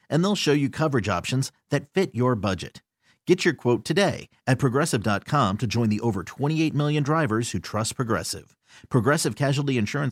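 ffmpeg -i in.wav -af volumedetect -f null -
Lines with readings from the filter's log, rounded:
mean_volume: -24.0 dB
max_volume: -6.2 dB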